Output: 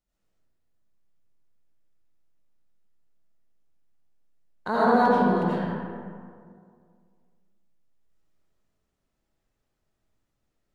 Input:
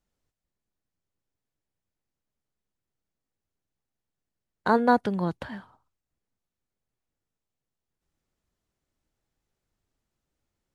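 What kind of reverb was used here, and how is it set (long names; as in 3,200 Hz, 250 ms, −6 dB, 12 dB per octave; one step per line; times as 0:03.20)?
comb and all-pass reverb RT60 2.1 s, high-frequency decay 0.45×, pre-delay 45 ms, DRR −10 dB
level −7 dB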